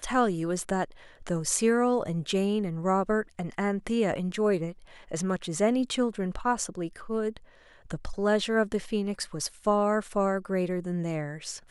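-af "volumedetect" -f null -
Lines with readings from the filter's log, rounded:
mean_volume: -28.4 dB
max_volume: -9.4 dB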